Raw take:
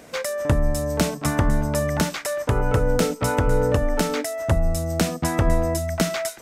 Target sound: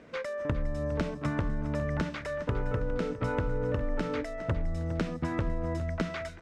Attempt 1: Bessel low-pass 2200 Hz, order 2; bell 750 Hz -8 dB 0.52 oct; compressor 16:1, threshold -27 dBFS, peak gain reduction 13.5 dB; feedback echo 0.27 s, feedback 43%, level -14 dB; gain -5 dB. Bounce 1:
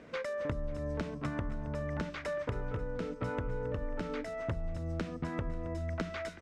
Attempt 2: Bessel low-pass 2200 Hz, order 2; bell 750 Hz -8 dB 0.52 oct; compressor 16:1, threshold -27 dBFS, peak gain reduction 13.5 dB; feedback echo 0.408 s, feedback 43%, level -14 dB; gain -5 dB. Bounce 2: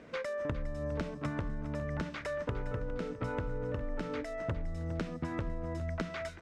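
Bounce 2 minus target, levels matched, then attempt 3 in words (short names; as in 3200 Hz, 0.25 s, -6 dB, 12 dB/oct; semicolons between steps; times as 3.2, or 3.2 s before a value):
compressor: peak gain reduction +6 dB
Bessel low-pass 2200 Hz, order 2; bell 750 Hz -8 dB 0.52 oct; compressor 16:1, threshold -20.5 dBFS, peak gain reduction 7.5 dB; feedback echo 0.408 s, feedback 43%, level -14 dB; gain -5 dB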